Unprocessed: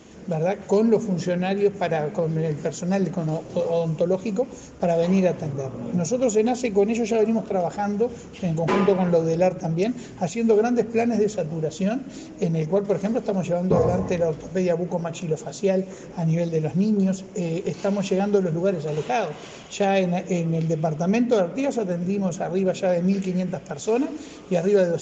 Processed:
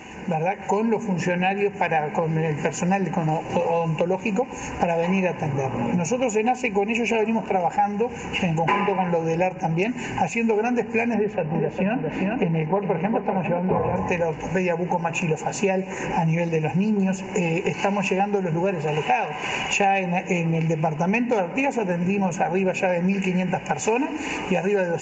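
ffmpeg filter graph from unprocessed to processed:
ffmpeg -i in.wav -filter_complex "[0:a]asettb=1/sr,asplit=3[link_01][link_02][link_03];[link_01]atrim=end=11.144[link_04];[link_02]atrim=start=11.14:end=13.96,asetpts=PTS-STARTPTS,afade=type=in:duration=0.004:curve=qsin,afade=type=out:start_time=2.816:duration=0.004:curve=qsin,lowpass=2300,aecho=1:1:405:0.422,atrim=end_sample=124362[link_05];[link_03]atrim=start=13.956[link_06];[link_04][link_05]acrossfade=duration=0.004:curve1=hsin:curve2=qsin[link_07];[link_07][link_06]acrossfade=duration=0.004:curve1=qsin:curve2=hsin,dynaudnorm=framelen=490:gausssize=3:maxgain=11.5dB,superequalizer=9b=3.98:11b=2.82:12b=3.98:13b=0.282:14b=0.562,acompressor=threshold=-26dB:ratio=4,volume=4dB" out.wav

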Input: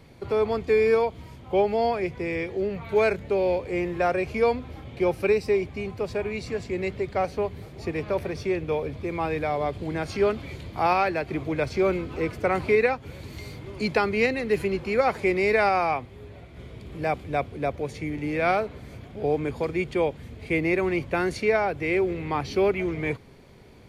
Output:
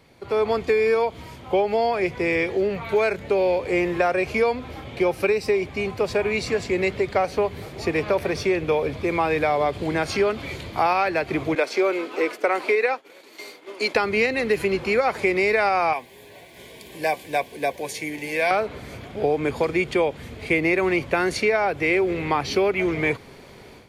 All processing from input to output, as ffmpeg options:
ffmpeg -i in.wav -filter_complex "[0:a]asettb=1/sr,asplit=3[link_01][link_02][link_03];[link_01]atrim=end=11.554[link_04];[link_02]atrim=start=11.55:end=13.95,asetpts=PTS-STARTPTS,afade=type=in:duration=0.004:curve=qsin,afade=type=out:start_time=2.396:duration=0.004:curve=qsin,highpass=frequency=300:width=0.5412,highpass=frequency=300:width=1.3066,agate=range=-33dB:threshold=-39dB:ratio=3:release=100:detection=peak[link_05];[link_03]atrim=start=13.946[link_06];[link_04][link_05]acrossfade=duration=0.004:curve1=hsin:curve2=qsin[link_07];[link_07][link_06]acrossfade=duration=0.004:curve1=qsin:curve2=hsin,asettb=1/sr,asplit=3[link_08][link_09][link_10];[link_08]atrim=end=15.934[link_11];[link_09]atrim=start=15.93:end=18.51,asetpts=PTS-STARTPTS,afade=type=in:duration=0.004:curve=qsin,afade=type=out:start_time=2.576:duration=0.004:curve=qsin,asuperstop=centerf=1300:order=8:qfactor=4.1,aemphasis=mode=production:type=bsi,flanger=delay=4.4:depth=2:regen=-66:speed=1.2:shape=sinusoidal[link_12];[link_10]atrim=start=18.506[link_13];[link_11][link_12]acrossfade=duration=0.004:curve1=hsin:curve2=qsin[link_14];[link_14][link_13]acrossfade=duration=0.004:curve1=qsin:curve2=hsin,dynaudnorm=framelen=250:gausssize=3:maxgain=10.5dB,lowshelf=frequency=270:gain=-9.5,acompressor=threshold=-17dB:ratio=6" out.wav

